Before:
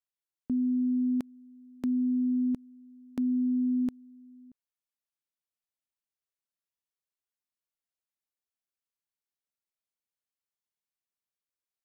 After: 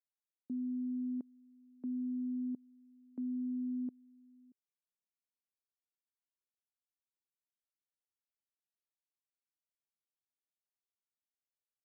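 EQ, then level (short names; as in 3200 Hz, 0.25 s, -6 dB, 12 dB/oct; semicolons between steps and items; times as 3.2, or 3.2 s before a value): ladder band-pass 330 Hz, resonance 20%; 0.0 dB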